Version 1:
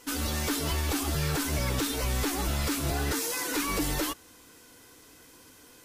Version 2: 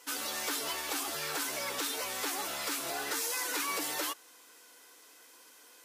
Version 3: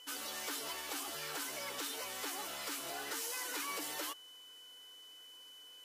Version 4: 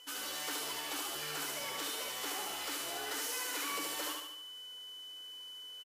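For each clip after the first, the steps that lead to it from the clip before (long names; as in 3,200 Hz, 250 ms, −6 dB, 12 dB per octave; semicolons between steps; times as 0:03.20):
high-pass filter 530 Hz 12 dB per octave; level −2 dB
steady tone 3,000 Hz −47 dBFS; level −6.5 dB
repeating echo 73 ms, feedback 52%, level −3 dB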